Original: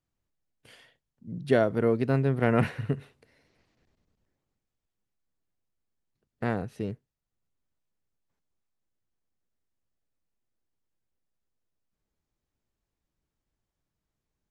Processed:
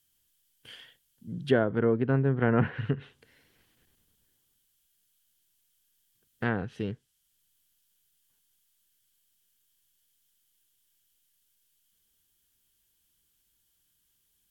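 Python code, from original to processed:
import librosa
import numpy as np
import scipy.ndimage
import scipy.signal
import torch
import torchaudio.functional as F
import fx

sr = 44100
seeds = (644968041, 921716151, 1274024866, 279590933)

y = fx.dmg_noise_colour(x, sr, seeds[0], colour='violet', level_db=-69.0)
y = fx.graphic_eq_31(y, sr, hz=(630, 1600, 3150), db=(-6, 7, 12))
y = fx.env_lowpass_down(y, sr, base_hz=1300.0, full_db=-21.5)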